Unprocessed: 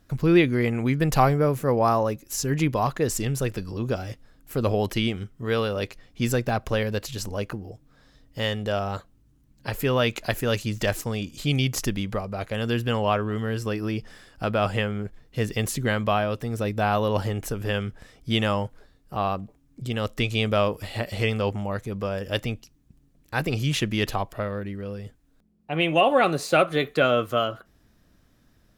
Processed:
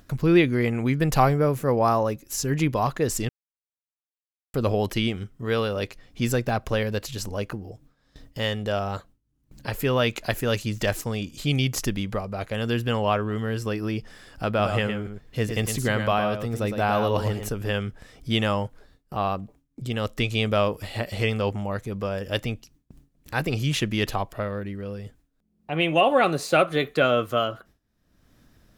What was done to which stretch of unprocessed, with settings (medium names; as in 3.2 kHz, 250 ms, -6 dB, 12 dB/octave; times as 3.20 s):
3.29–4.54 s: mute
14.48–17.49 s: delay 110 ms -7 dB
whole clip: gate with hold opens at -46 dBFS; upward compressor, threshold -36 dBFS